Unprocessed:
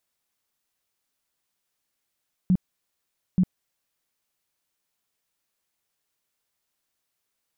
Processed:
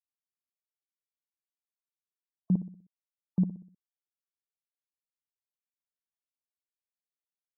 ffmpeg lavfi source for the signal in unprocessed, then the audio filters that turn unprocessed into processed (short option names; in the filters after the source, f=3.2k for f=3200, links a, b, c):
-f lavfi -i "aevalsrc='0.168*sin(2*PI*183*mod(t,0.88))*lt(mod(t,0.88),10/183)':d=1.76:s=44100"
-filter_complex "[0:a]highpass=190,afftfilt=real='re*gte(hypot(re,im),0.00501)':imag='im*gte(hypot(re,im),0.00501)':win_size=1024:overlap=0.75,asplit=2[a][b];[b]adelay=62,lowpass=f=880:p=1,volume=-12dB,asplit=2[c][d];[d]adelay=62,lowpass=f=880:p=1,volume=0.47,asplit=2[e][f];[f]adelay=62,lowpass=f=880:p=1,volume=0.47,asplit=2[g][h];[h]adelay=62,lowpass=f=880:p=1,volume=0.47,asplit=2[i][j];[j]adelay=62,lowpass=f=880:p=1,volume=0.47[k];[a][c][e][g][i][k]amix=inputs=6:normalize=0"